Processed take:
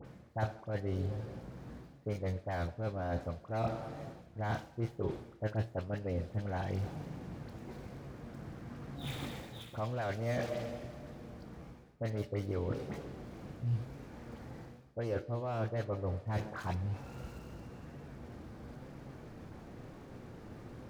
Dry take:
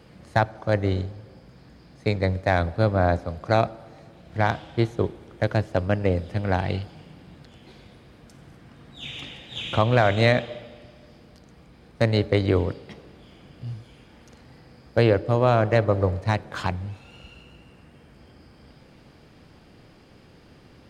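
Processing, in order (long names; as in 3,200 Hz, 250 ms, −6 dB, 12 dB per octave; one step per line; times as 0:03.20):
running median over 15 samples
reversed playback
downward compressor 10 to 1, threshold −35 dBFS, peak gain reduction 21.5 dB
reversed playback
flanger 1 Hz, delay 7 ms, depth 2.5 ms, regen +77%
all-pass dispersion highs, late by 49 ms, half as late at 1,900 Hz
level +7 dB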